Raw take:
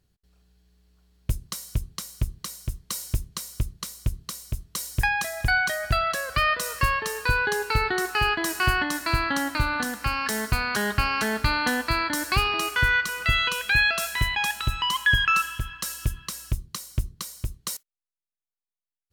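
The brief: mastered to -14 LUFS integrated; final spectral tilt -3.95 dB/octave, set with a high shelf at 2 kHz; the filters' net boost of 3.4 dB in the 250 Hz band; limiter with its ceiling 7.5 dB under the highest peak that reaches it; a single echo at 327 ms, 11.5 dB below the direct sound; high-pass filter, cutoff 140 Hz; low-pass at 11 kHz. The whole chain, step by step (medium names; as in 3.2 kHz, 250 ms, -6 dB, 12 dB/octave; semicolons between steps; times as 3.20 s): high-pass 140 Hz; low-pass 11 kHz; peaking EQ 250 Hz +5 dB; treble shelf 2 kHz -7 dB; peak limiter -19 dBFS; delay 327 ms -11.5 dB; trim +15 dB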